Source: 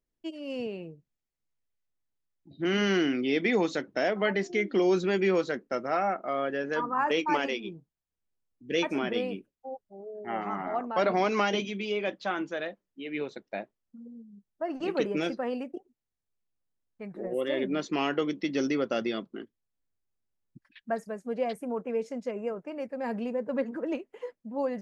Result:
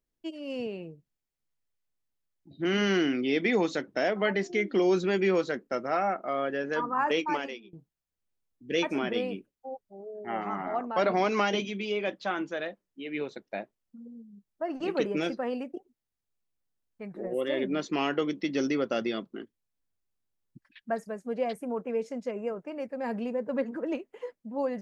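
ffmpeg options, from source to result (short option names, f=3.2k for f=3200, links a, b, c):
-filter_complex "[0:a]asplit=2[a][b];[a]atrim=end=7.73,asetpts=PTS-STARTPTS,afade=t=out:st=7.15:d=0.58:silence=0.0668344[c];[b]atrim=start=7.73,asetpts=PTS-STARTPTS,afade=t=in:d=0.004:c=hsin:silence=0.0668344[d];[c][d]concat=n=2:v=0:a=1"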